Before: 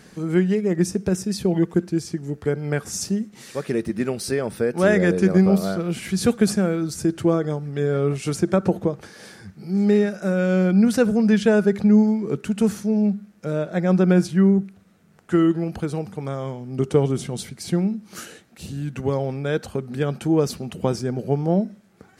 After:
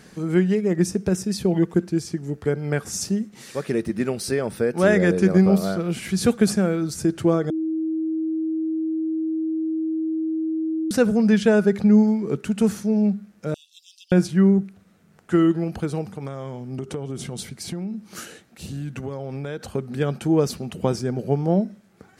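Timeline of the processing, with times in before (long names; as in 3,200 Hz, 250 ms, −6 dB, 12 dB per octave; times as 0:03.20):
0:07.50–0:10.91: beep over 319 Hz −21.5 dBFS
0:13.54–0:14.12: Chebyshev high-pass filter 2,700 Hz, order 10
0:16.03–0:19.68: downward compressor, threshold −26 dBFS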